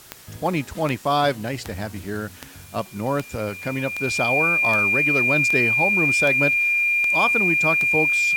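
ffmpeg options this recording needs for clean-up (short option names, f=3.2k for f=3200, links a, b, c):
-af "adeclick=t=4,bandreject=f=2.4k:w=30,afwtdn=0.005"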